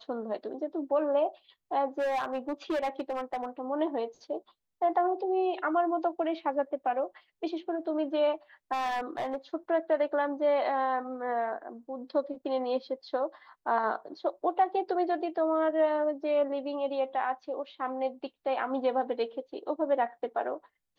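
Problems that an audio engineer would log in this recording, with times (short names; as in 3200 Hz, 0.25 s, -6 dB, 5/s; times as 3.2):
1.99–3.46 clipped -26.5 dBFS
8.72–9.36 clipped -27 dBFS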